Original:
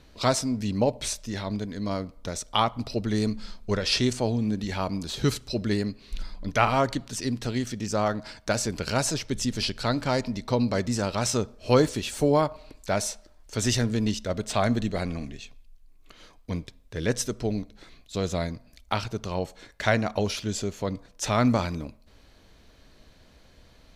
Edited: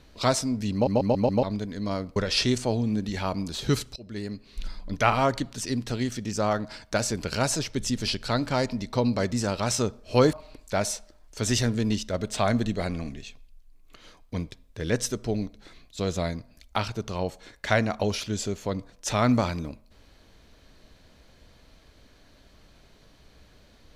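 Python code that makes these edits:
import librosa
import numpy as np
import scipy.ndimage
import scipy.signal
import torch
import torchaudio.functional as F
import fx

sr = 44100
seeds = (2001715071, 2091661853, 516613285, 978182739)

y = fx.edit(x, sr, fx.stutter_over(start_s=0.73, slice_s=0.14, count=5),
    fx.cut(start_s=2.16, length_s=1.55),
    fx.fade_in_from(start_s=5.51, length_s=0.72, floor_db=-22.0),
    fx.cut(start_s=11.88, length_s=0.61), tone=tone)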